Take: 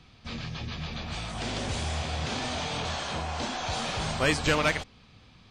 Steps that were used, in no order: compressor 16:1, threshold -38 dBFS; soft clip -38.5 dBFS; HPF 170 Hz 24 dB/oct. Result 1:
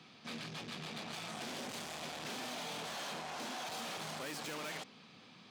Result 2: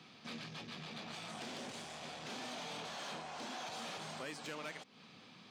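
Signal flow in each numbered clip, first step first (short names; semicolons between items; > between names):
soft clip > HPF > compressor; compressor > soft clip > HPF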